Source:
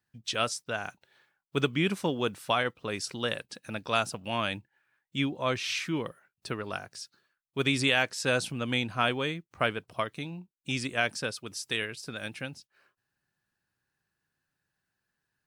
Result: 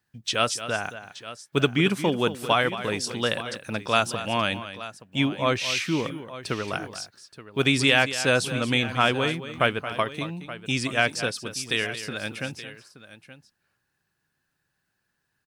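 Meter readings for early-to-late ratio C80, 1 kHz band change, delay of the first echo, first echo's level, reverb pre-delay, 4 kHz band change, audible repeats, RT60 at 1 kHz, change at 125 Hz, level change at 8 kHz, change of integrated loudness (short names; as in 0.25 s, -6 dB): none, +6.0 dB, 0.224 s, -12.5 dB, none, +6.0 dB, 2, none, +6.0 dB, +6.0 dB, +5.5 dB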